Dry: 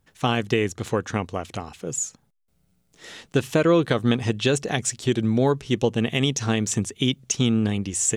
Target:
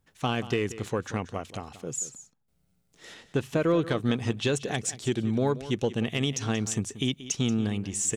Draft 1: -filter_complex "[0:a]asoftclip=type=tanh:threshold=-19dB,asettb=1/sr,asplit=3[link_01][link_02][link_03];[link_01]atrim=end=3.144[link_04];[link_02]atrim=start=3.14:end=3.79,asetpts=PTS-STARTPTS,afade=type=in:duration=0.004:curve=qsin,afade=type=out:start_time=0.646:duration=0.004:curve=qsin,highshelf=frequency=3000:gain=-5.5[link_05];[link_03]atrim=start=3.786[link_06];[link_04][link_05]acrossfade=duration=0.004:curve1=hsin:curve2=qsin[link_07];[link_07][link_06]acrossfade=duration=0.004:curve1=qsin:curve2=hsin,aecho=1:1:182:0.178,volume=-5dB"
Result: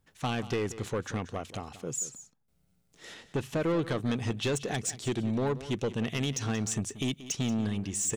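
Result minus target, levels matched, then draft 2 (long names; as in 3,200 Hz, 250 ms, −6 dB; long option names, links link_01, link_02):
soft clipping: distortion +15 dB
-filter_complex "[0:a]asoftclip=type=tanh:threshold=-7.5dB,asettb=1/sr,asplit=3[link_01][link_02][link_03];[link_01]atrim=end=3.144[link_04];[link_02]atrim=start=3.14:end=3.79,asetpts=PTS-STARTPTS,afade=type=in:duration=0.004:curve=qsin,afade=type=out:start_time=0.646:duration=0.004:curve=qsin,highshelf=frequency=3000:gain=-5.5[link_05];[link_03]atrim=start=3.786[link_06];[link_04][link_05]acrossfade=duration=0.004:curve1=hsin:curve2=qsin[link_07];[link_07][link_06]acrossfade=duration=0.004:curve1=qsin:curve2=hsin,aecho=1:1:182:0.178,volume=-5dB"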